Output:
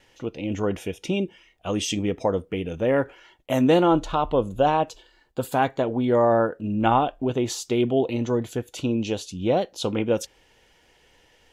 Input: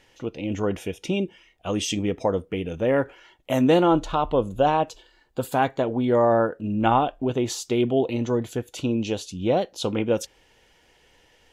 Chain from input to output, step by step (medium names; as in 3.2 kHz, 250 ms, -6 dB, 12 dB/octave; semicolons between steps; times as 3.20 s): gate with hold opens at -52 dBFS